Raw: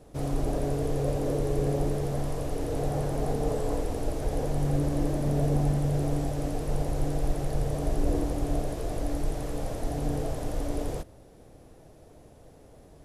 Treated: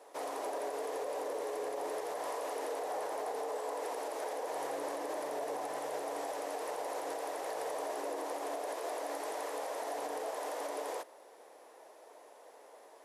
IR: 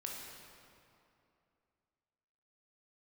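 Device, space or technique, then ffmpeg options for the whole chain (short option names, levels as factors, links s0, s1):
laptop speaker: -af "highpass=f=440:w=0.5412,highpass=f=440:w=1.3066,equalizer=f=970:t=o:w=0.47:g=9,equalizer=f=1900:t=o:w=0.49:g=5,alimiter=level_in=1.88:limit=0.0631:level=0:latency=1:release=69,volume=0.531"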